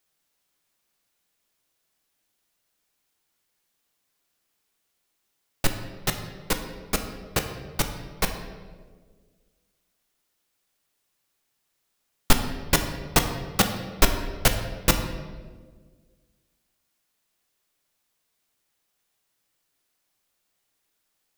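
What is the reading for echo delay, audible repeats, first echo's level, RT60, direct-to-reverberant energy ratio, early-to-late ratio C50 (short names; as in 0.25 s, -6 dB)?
none, none, none, 1.6 s, 5.0 dB, 7.5 dB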